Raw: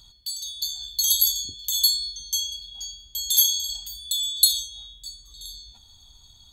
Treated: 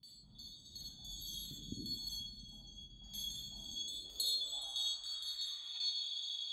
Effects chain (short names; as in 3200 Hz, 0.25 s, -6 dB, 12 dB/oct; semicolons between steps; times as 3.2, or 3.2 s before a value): slices in reverse order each 0.116 s, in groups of 3; band-pass sweep 200 Hz -> 3500 Hz, 3.44–5.97; on a send: delay with a stepping band-pass 0.139 s, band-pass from 1100 Hz, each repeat 1.4 oct, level -8 dB; on the sum: digital reverb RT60 0.67 s, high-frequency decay 0.75×, pre-delay 15 ms, DRR -3.5 dB; gain +8.5 dB